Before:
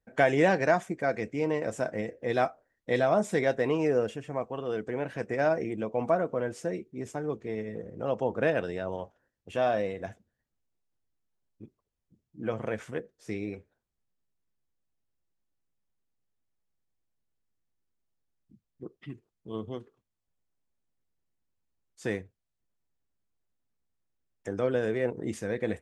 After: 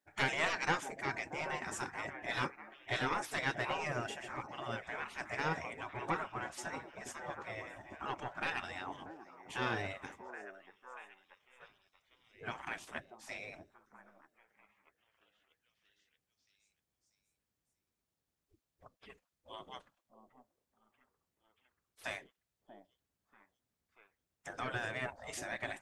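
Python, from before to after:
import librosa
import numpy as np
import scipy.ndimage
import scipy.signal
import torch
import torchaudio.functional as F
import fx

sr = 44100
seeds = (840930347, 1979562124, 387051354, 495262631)

y = fx.echo_stepped(x, sr, ms=636, hz=570.0, octaves=0.7, feedback_pct=70, wet_db=-9.5)
y = 10.0 ** (-16.5 / 20.0) * np.tanh(y / 10.0 ** (-16.5 / 20.0))
y = fx.spec_gate(y, sr, threshold_db=-15, keep='weak')
y = y * librosa.db_to_amplitude(2.5)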